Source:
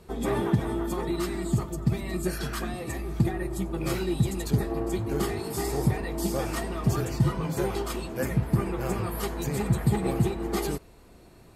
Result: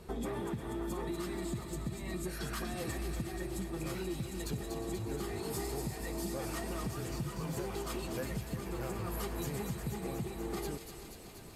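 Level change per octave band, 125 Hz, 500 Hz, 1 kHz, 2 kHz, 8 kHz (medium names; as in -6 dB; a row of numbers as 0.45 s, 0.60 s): -13.0 dB, -9.0 dB, -9.0 dB, -8.0 dB, -6.0 dB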